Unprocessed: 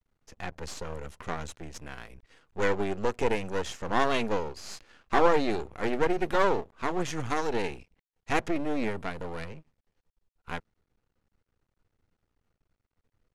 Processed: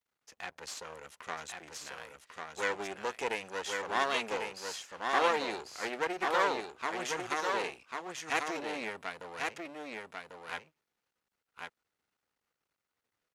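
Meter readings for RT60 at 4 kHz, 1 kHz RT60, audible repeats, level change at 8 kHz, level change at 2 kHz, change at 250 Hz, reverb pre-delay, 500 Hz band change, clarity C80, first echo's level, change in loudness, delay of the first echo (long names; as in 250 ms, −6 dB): no reverb audible, no reverb audible, 1, +1.5 dB, 0.0 dB, −11.0 dB, no reverb audible, −7.0 dB, no reverb audible, −4.0 dB, −5.0 dB, 1,095 ms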